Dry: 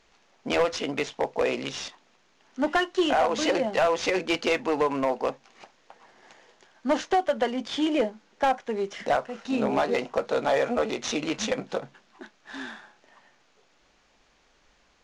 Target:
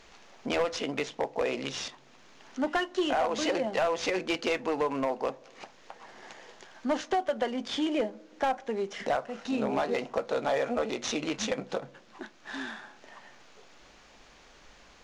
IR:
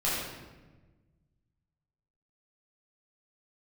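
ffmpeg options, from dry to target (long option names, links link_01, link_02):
-filter_complex "[0:a]acompressor=threshold=-57dB:ratio=1.5,asplit=2[link_01][link_02];[1:a]atrim=start_sample=2205,lowpass=1400[link_03];[link_02][link_03]afir=irnorm=-1:irlink=0,volume=-31dB[link_04];[link_01][link_04]amix=inputs=2:normalize=0,volume=8dB"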